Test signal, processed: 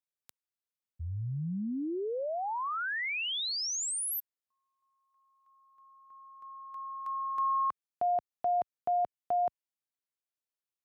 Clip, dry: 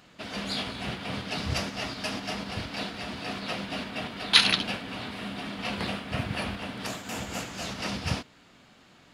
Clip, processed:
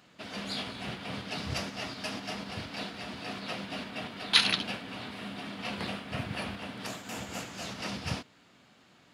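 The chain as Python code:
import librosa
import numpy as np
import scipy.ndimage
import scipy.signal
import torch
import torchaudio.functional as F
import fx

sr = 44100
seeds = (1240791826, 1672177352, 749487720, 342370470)

y = scipy.signal.sosfilt(scipy.signal.butter(2, 79.0, 'highpass', fs=sr, output='sos'), x)
y = y * 10.0 ** (-4.0 / 20.0)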